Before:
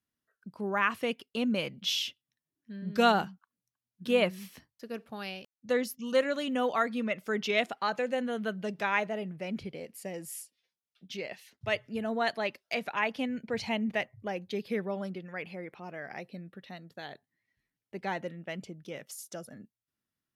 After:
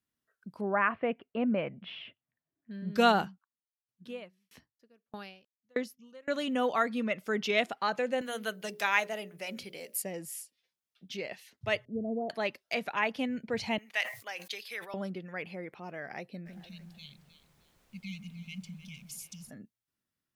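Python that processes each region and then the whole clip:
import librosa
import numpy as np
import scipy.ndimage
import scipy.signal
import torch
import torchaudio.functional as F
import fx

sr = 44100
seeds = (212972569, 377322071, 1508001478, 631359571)

y = fx.chain(x, sr, fx.cheby2_lowpass(hz=7000.0, order=4, stop_db=60),
    fx.peak_eq(hz=670.0, db=8.5, octaves=0.3), at=(0.61, 2.71))
y = fx.chain(y, sr, fx.high_shelf(hz=10000.0, db=-8.0),
    fx.tremolo_decay(direction='decaying', hz=1.6, depth_db=38), at=(3.26, 6.28))
y = fx.chain(y, sr, fx.riaa(side='recording'),
    fx.hum_notches(base_hz=60, count=10), at=(8.21, 10.02))
y = fx.chain(y, sr, fx.sample_sort(block=8),
    fx.steep_lowpass(hz=630.0, slope=36), at=(11.85, 12.3))
y = fx.chain(y, sr, fx.highpass(hz=1100.0, slope=12),
    fx.high_shelf(hz=3000.0, db=9.0),
    fx.sustainer(db_per_s=120.0), at=(13.78, 14.94))
y = fx.brickwall_bandstop(y, sr, low_hz=240.0, high_hz=2100.0, at=(16.45, 19.49), fade=0.02)
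y = fx.dmg_noise_colour(y, sr, seeds[0], colour='pink', level_db=-69.0, at=(16.45, 19.49), fade=0.02)
y = fx.echo_alternate(y, sr, ms=154, hz=1500.0, feedback_pct=54, wet_db=-7.5, at=(16.45, 19.49), fade=0.02)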